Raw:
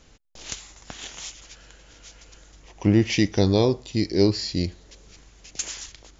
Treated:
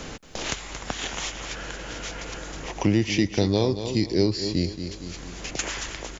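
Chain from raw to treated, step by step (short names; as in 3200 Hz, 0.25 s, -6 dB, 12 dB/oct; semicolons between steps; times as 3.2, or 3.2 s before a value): feedback echo 0.227 s, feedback 32%, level -12.5 dB; three-band squash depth 70%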